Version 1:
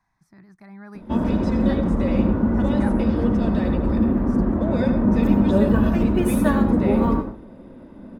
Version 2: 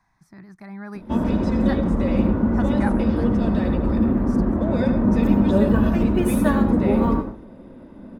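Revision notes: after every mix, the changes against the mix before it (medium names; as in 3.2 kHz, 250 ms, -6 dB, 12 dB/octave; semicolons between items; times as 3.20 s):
speech +5.5 dB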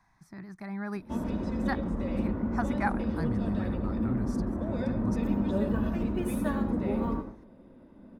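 background -11.0 dB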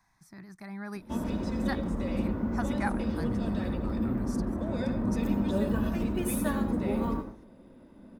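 speech -4.0 dB; master: add treble shelf 3.7 kHz +11 dB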